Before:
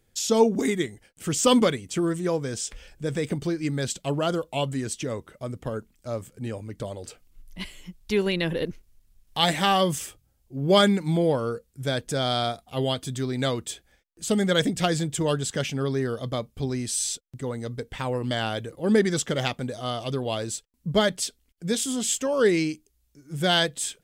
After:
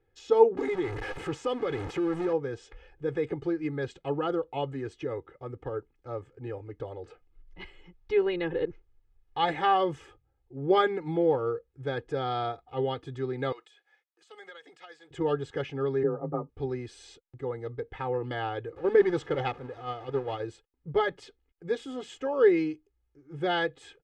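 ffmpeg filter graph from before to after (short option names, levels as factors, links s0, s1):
-filter_complex "[0:a]asettb=1/sr,asplit=3[s0][s1][s2];[s0]atrim=end=0.574[s3];[s1]atrim=start=0.57:end=2.33,asetpts=PTS-STARTPTS,afade=t=in:d=0.004:c=qsin,afade=t=out:st=1.756:d=0.004:c=qsin,aeval=exprs='val(0)+0.5*0.0631*sgn(val(0))':c=same,highshelf=f=5600:g=6,acompressor=threshold=0.0708:ratio=4:attack=3.2:release=140:knee=1:detection=peak[s4];[s2]atrim=start=2.326[s5];[s3][s4]acrossfade=d=0.004:c1=hsin:c2=qsin[s6];[s6][s5]acrossfade=d=0.004:c1=qsin:c2=hsin,asettb=1/sr,asplit=3[s7][s8][s9];[s7]atrim=end=13.524[s10];[s8]atrim=start=13.52:end=15.11,asetpts=PTS-STARTPTS,afade=t=in:d=0.004:c=qsin,afade=t=out:st=1.586:d=0.004:c=qsin,highpass=760,highshelf=f=2600:g=10,acompressor=threshold=0.0112:ratio=5:attack=3.2:release=140:knee=1:detection=peak[s11];[s9]atrim=start=15.106[s12];[s10][s11]acrossfade=d=0.004:c1=hsin:c2=qsin[s13];[s13][s12]acrossfade=d=0.004:c1=qsin:c2=hsin,asettb=1/sr,asplit=3[s14][s15][s16];[s14]atrim=end=16.034[s17];[s15]atrim=start=16.03:end=16.49,asetpts=PTS-STARTPTS,afade=t=in:d=0.004:c=qsin,afade=t=out:st=0.456:d=0.004:c=qsin,lowpass=f=1200:w=0.5412,lowpass=f=1200:w=1.3066,afreqshift=27,aecho=1:1:7.3:0.85,atrim=end_sample=20286[s18];[s16]atrim=start=16.486[s19];[s17][s18]acrossfade=d=0.004:c1=hsin:c2=qsin[s20];[s20][s19]acrossfade=d=0.004:c1=qsin:c2=hsin,asettb=1/sr,asplit=3[s21][s22][s23];[s21]atrim=end=18.764[s24];[s22]atrim=start=18.76:end=20.4,asetpts=PTS-STARTPTS,afade=t=in:d=0.004:c=qsin,afade=t=out:st=1.636:d=0.004:c=qsin,aeval=exprs='val(0)+0.5*0.0335*sgn(val(0))':c=same,agate=range=0.398:threshold=0.0501:ratio=16:release=100:detection=peak[s25];[s23]atrim=start=20.396[s26];[s24][s25]acrossfade=d=0.004:c1=hsin:c2=qsin[s27];[s27][s26]acrossfade=d=0.004:c1=qsin:c2=hsin,lowpass=1700,lowshelf=f=130:g=-7.5,aecho=1:1:2.4:0.98,volume=0.596"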